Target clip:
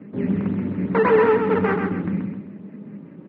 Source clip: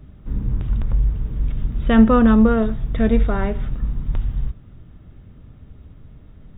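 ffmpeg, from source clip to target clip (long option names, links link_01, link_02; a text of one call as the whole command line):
ffmpeg -i in.wav -filter_complex "[0:a]equalizer=frequency=900:width=1.5:gain=6,acrossover=split=760[link_01][link_02];[link_02]acrusher=bits=7:mix=0:aa=0.000001[link_03];[link_01][link_03]amix=inputs=2:normalize=0,flanger=delay=9.3:depth=1.9:regen=50:speed=0.37:shape=triangular,acrusher=samples=31:mix=1:aa=0.000001:lfo=1:lforange=18.6:lforate=2.6,asoftclip=type=tanh:threshold=-18.5dB,aecho=1:1:262|524|786|1048|1310:0.562|0.208|0.077|0.0285|0.0105,asetrate=88200,aresample=44100,highpass=frequency=150:width=0.5412,highpass=frequency=150:width=1.3066,equalizer=frequency=200:width_type=q:width=4:gain=8,equalizer=frequency=290:width_type=q:width=4:gain=7,equalizer=frequency=730:width_type=q:width=4:gain=-5,lowpass=frequency=2000:width=0.5412,lowpass=frequency=2000:width=1.3066,volume=5dB" out.wav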